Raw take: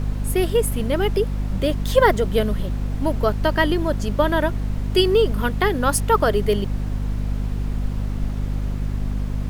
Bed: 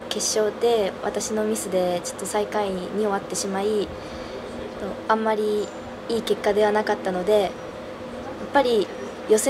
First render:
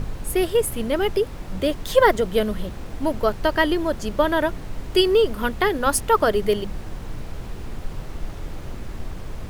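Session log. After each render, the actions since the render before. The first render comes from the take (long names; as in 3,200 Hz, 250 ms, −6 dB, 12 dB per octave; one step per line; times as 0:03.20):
mains-hum notches 50/100/150/200/250 Hz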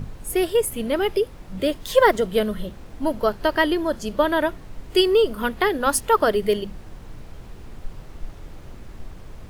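noise reduction from a noise print 7 dB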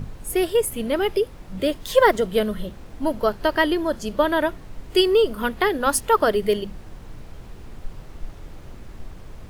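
no processing that can be heard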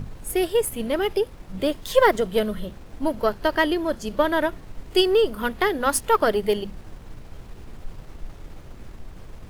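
gain on one half-wave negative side −3 dB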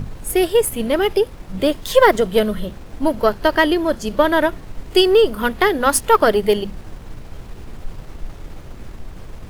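level +6 dB
brickwall limiter −1 dBFS, peak gain reduction 2.5 dB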